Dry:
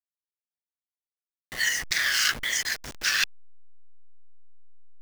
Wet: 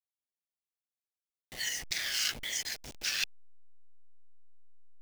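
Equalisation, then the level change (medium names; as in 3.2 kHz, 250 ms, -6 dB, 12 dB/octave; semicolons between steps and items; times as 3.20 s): high-order bell 1.4 kHz -8 dB 1.1 oct; -6.5 dB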